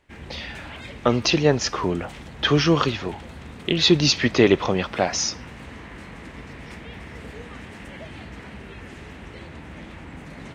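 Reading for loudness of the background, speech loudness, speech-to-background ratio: -39.5 LUFS, -21.0 LUFS, 18.5 dB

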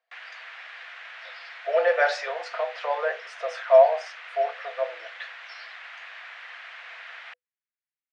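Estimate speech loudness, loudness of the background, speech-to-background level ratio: -24.5 LUFS, -41.0 LUFS, 16.5 dB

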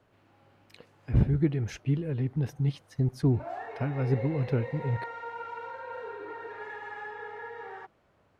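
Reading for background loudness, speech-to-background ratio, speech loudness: -40.0 LUFS, 10.5 dB, -29.5 LUFS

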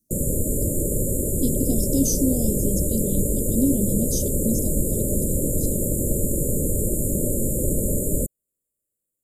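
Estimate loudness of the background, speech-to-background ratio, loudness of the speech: -23.5 LUFS, -3.0 dB, -26.5 LUFS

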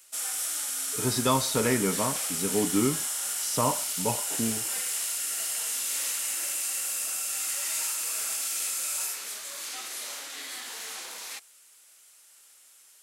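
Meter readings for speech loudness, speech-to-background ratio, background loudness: -29.0 LUFS, 0.0 dB, -29.0 LUFS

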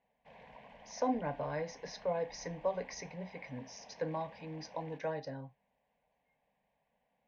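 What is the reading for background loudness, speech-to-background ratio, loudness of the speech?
-56.0 LUFS, 16.5 dB, -39.5 LUFS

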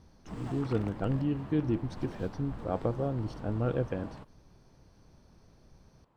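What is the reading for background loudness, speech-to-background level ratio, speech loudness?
-45.5 LUFS, 12.0 dB, -33.5 LUFS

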